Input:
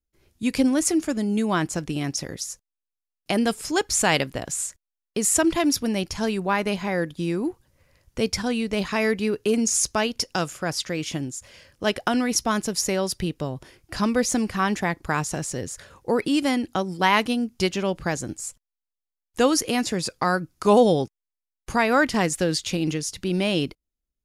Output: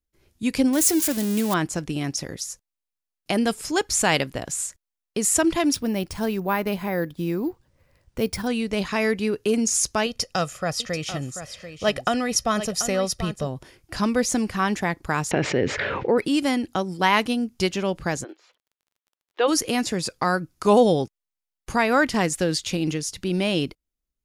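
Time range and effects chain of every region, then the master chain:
0.73–1.54 switching spikes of -17 dBFS + notch 1300 Hz, Q 24
5.74–8.47 high shelf 2200 Hz -5.5 dB + careless resampling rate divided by 3×, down none, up hold
10.06–13.47 high shelf 9400 Hz -5 dB + comb 1.6 ms, depth 51% + echo 0.737 s -11.5 dB
15.31–16.18 speaker cabinet 130–3100 Hz, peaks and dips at 160 Hz -4 dB, 410 Hz +5 dB, 1100 Hz -4 dB, 2200 Hz +6 dB + fast leveller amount 70%
18.23–19.47 elliptic band-pass 370–3700 Hz + crackle 34/s -53 dBFS
whole clip: dry

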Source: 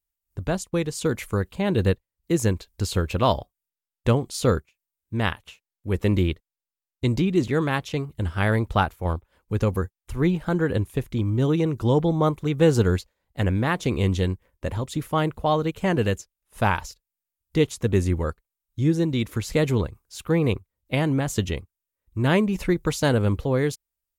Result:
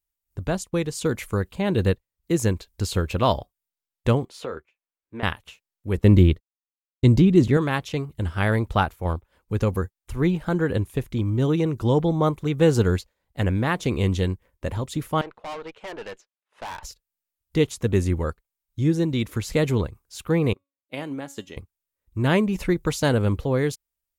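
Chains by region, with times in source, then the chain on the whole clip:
4.25–5.23 three-band isolator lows -16 dB, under 300 Hz, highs -16 dB, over 3000 Hz + compressor 3:1, threshold -30 dBFS + doubler 13 ms -11 dB
5.97–7.57 expander -39 dBFS + low shelf 360 Hz +8.5 dB + notch 2400 Hz, Q 26
15.21–16.83 BPF 560–3100 Hz + tube stage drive 31 dB, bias 0.6
20.53–21.57 HPF 220 Hz + resonator 280 Hz, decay 0.33 s + upward expander, over -49 dBFS
whole clip: dry

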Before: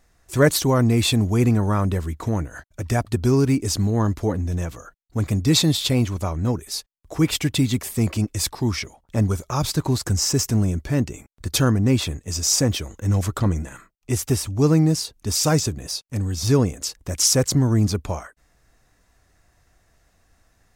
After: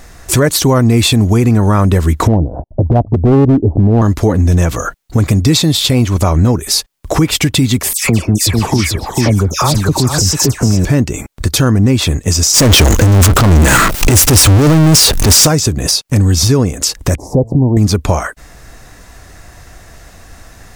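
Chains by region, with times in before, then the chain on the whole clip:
2.27–4.02 steep low-pass 840 Hz 48 dB/oct + hard clip -16 dBFS
7.93–10.85 dispersion lows, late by 0.12 s, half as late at 1900 Hz + echo 0.443 s -9 dB
12.54–15.47 negative-ratio compressor -27 dBFS + power-law curve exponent 0.35
17.15–17.77 elliptic low-pass 870 Hz + de-hum 112.5 Hz, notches 6
whole clip: compressor 5:1, threshold -32 dBFS; maximiser +25 dB; gain -1 dB

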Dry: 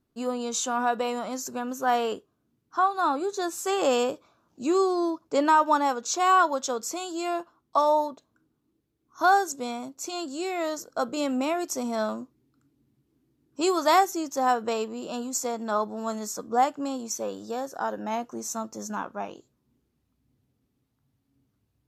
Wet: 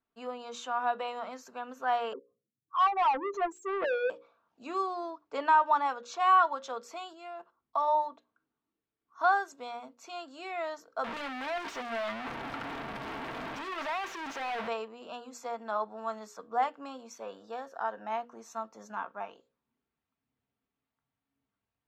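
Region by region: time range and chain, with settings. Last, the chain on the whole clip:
2.13–4.1 spectral contrast raised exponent 3.9 + envelope phaser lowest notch 220 Hz, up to 3400 Hz, full sweep at -29.5 dBFS + overdrive pedal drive 27 dB, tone 1800 Hz, clips at -14.5 dBFS
7.13–7.88 low shelf 240 Hz +8.5 dB + level quantiser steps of 12 dB
11.04–14.68 infinite clipping + high shelf 9500 Hz -11.5 dB
whole clip: three-band isolator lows -14 dB, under 600 Hz, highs -22 dB, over 3500 Hz; notches 60/120/180/240/300/360/420/480/540 Hz; comb 4.4 ms, depth 31%; gain -3 dB

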